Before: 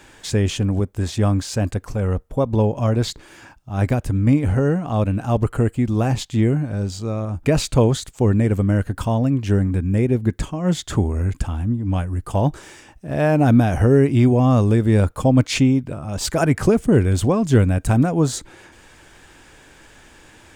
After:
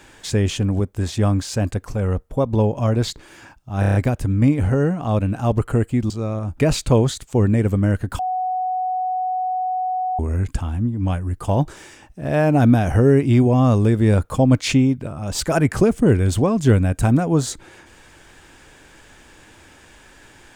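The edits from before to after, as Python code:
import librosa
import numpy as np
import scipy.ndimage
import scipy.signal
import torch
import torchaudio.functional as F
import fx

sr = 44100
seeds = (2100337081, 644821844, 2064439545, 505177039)

y = fx.edit(x, sr, fx.stutter(start_s=3.8, slice_s=0.03, count=6),
    fx.cut(start_s=5.95, length_s=1.01),
    fx.bleep(start_s=9.05, length_s=2.0, hz=741.0, db=-19.5), tone=tone)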